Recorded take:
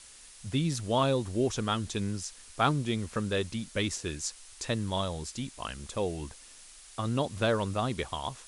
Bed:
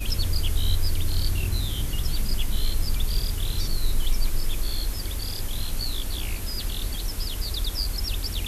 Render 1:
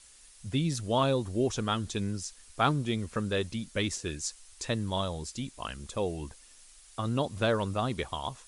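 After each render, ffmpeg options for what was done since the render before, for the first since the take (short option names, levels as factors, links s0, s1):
-af "afftdn=nr=6:nf=-52"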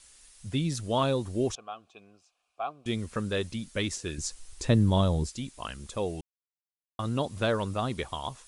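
-filter_complex "[0:a]asettb=1/sr,asplit=3[s0][s1][s2];[s0]atrim=end=1.554[s3];[s1]atrim=start=1.55:end=2.86,asetpts=PTS-STARTPTS,afade=t=in:d=0.004:c=qsin,afade=t=out:st=1.306:d=0.004:c=qsin,asplit=3[s4][s5][s6];[s4]bandpass=f=730:t=q:w=8,volume=1[s7];[s5]bandpass=f=1090:t=q:w=8,volume=0.501[s8];[s6]bandpass=f=2440:t=q:w=8,volume=0.355[s9];[s7][s8][s9]amix=inputs=3:normalize=0[s10];[s2]atrim=start=2.856[s11];[s3][s10]acrossfade=d=0.004:c1=hsin:c2=qsin[s12];[s12][s11]acrossfade=d=0.004:c1=qsin:c2=hsin,asettb=1/sr,asplit=3[s13][s14][s15];[s13]atrim=end=4.184[s16];[s14]atrim=start=4.18:end=5.29,asetpts=PTS-STARTPTS,afade=t=in:d=0.004:c=qsin,afade=t=out:st=1.106:d=0.004:c=qsin,lowshelf=f=490:g=12[s17];[s15]atrim=start=5.286[s18];[s16][s17]acrossfade=d=0.004:c1=hsin:c2=qsin[s19];[s19][s18]acrossfade=d=0.004:c1=qsin:c2=hsin,asplit=3[s20][s21][s22];[s20]atrim=end=6.21,asetpts=PTS-STARTPTS,afade=t=out:st=6.206:d=0.004:c=hsin[s23];[s21]atrim=start=6.21:end=6.99,asetpts=PTS-STARTPTS,volume=0[s24];[s22]atrim=start=6.99,asetpts=PTS-STARTPTS,afade=t=in:d=0.004:c=hsin[s25];[s23][s24][s25]concat=n=3:v=0:a=1"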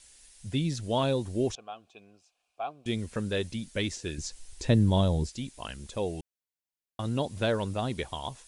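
-filter_complex "[0:a]acrossover=split=6800[s0][s1];[s1]acompressor=threshold=0.00316:ratio=4:attack=1:release=60[s2];[s0][s2]amix=inputs=2:normalize=0,equalizer=f=1200:t=o:w=0.37:g=-8"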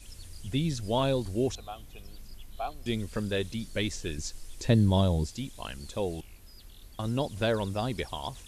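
-filter_complex "[1:a]volume=0.0841[s0];[0:a][s0]amix=inputs=2:normalize=0"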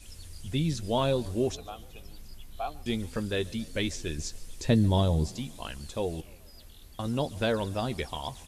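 -filter_complex "[0:a]asplit=2[s0][s1];[s1]adelay=13,volume=0.282[s2];[s0][s2]amix=inputs=2:normalize=0,asplit=5[s3][s4][s5][s6][s7];[s4]adelay=142,afreqshift=37,volume=0.0668[s8];[s5]adelay=284,afreqshift=74,volume=0.0389[s9];[s6]adelay=426,afreqshift=111,volume=0.0224[s10];[s7]adelay=568,afreqshift=148,volume=0.013[s11];[s3][s8][s9][s10][s11]amix=inputs=5:normalize=0"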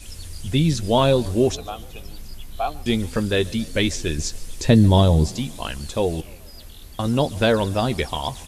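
-af "volume=2.99,alimiter=limit=0.794:level=0:latency=1"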